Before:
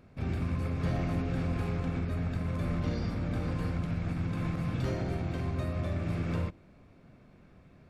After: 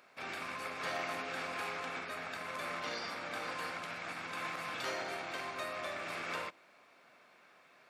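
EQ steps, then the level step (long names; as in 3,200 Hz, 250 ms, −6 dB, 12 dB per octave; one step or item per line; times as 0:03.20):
high-pass filter 920 Hz 12 dB per octave
+6.5 dB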